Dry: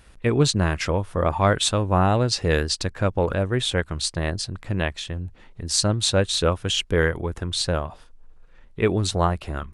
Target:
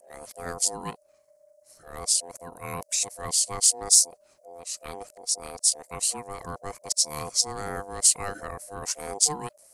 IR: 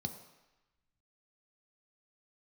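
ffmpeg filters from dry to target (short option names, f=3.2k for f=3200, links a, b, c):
-af "areverse,aeval=exprs='val(0)*sin(2*PI*600*n/s)':c=same,aexciter=amount=15.7:drive=4.6:freq=5.1k,volume=-12dB"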